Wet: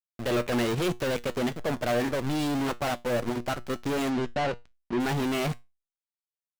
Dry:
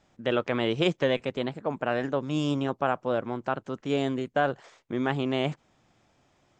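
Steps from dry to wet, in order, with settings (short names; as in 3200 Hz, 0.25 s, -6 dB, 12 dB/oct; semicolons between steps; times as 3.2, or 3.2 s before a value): fuzz box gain 33 dB, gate -41 dBFS; level quantiser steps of 19 dB; power-law curve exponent 0.35; 4.09–4.99 LPF 5700 Hz -> 3800 Hz 12 dB/oct; resonator 120 Hz, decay 0.22 s, harmonics all, mix 50%; gain -7.5 dB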